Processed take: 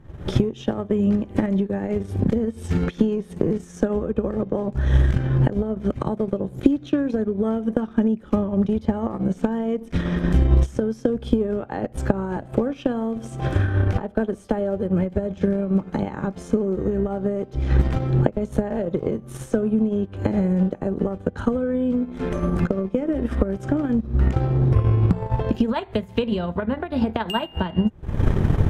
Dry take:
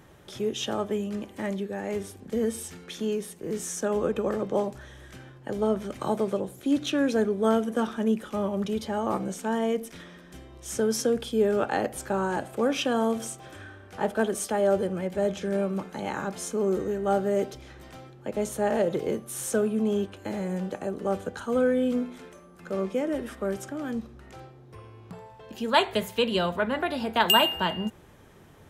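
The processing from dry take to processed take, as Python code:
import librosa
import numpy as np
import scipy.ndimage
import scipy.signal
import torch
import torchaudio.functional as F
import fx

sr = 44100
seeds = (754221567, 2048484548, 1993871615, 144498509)

y = fx.recorder_agc(x, sr, target_db=-15.5, rise_db_per_s=63.0, max_gain_db=30)
y = fx.riaa(y, sr, side='playback')
y = fx.transient(y, sr, attack_db=7, sustain_db=-10)
y = y * 10.0 ** (-6.0 / 20.0)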